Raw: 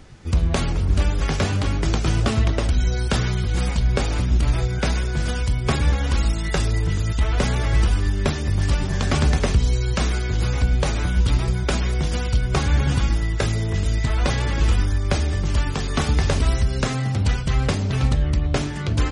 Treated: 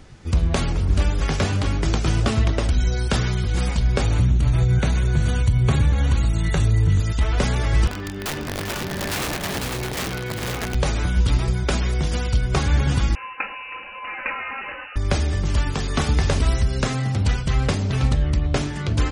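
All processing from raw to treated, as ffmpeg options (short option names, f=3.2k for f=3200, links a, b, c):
-filter_complex "[0:a]asettb=1/sr,asplit=3[a][b][c];[a]atrim=end=4.034[d];[b]atrim=start=4.03:end=7,asetpts=PTS-STARTPTS,afade=t=in:d=0.004:c=qsin,afade=t=out:st=2.966:d=0.004:c=qsin,acompressor=threshold=-20dB:ratio=2.5:attack=3.2:release=140:knee=1:detection=peak,asuperstop=centerf=5100:order=12:qfactor=5.6,equalizer=f=110:t=o:w=1.5:g=10[e];[c]atrim=start=6.996[f];[d][e]acrossfade=d=0.004:c1=hsin:c2=qsin[g];[g][f]acrossfade=d=0.004:c1=qsin:c2=hsin,asettb=1/sr,asplit=3[h][i][j];[h]atrim=end=7.874[k];[i]atrim=start=7.87:end=10.75,asetpts=PTS-STARTPTS,afade=t=in:d=0.004:c=qsin,afade=t=out:st=2.876:d=0.004:c=qsin,highpass=150,lowpass=3.1k,aeval=exprs='(mod(11.2*val(0)+1,2)-1)/11.2':c=same,aecho=1:1:48|289|400|499:0.133|0.106|0.335|0.531,atrim=end_sample=127008[l];[j]atrim=start=10.746[m];[k][l]acrossfade=d=0.004:c1=hsin:c2=qsin[n];[n][m]acrossfade=d=0.004:c1=qsin:c2=hsin,asettb=1/sr,asplit=3[o][p][q];[o]atrim=end=13.154[r];[p]atrim=start=13.15:end=14.96,asetpts=PTS-STARTPTS,afade=t=in:d=0.004:c=qsin,afade=t=out:st=1.806:d=0.004:c=qsin,highpass=540,lowpass=f=2.6k:t=q:w=0.5098,lowpass=f=2.6k:t=q:w=0.6013,lowpass=f=2.6k:t=q:w=0.9,lowpass=f=2.6k:t=q:w=2.563,afreqshift=-3000,aecho=1:1:3.8:0.5,atrim=end_sample=79821[s];[q]atrim=start=14.956[t];[r][s]acrossfade=d=0.004:c1=hsin:c2=qsin[u];[u][t]acrossfade=d=0.004:c1=qsin:c2=hsin"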